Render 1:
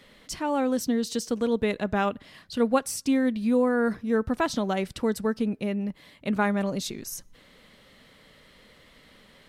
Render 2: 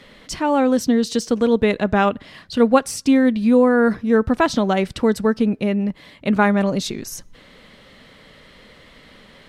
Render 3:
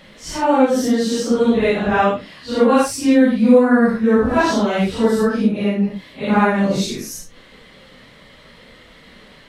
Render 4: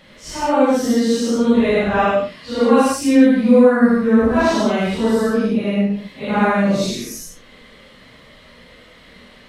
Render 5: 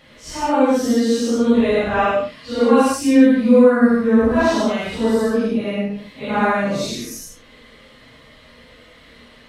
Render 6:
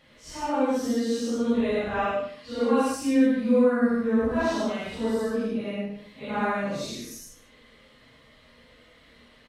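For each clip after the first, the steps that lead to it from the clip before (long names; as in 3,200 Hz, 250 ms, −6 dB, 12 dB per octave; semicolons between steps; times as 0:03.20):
high-shelf EQ 9,100 Hz −11.5 dB; level +8.5 dB
random phases in long frames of 200 ms; level +2 dB
reverb whose tail is shaped and stops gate 130 ms rising, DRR 0 dB; level −3 dB
notch comb filter 190 Hz
single-tap delay 152 ms −16.5 dB; level −9 dB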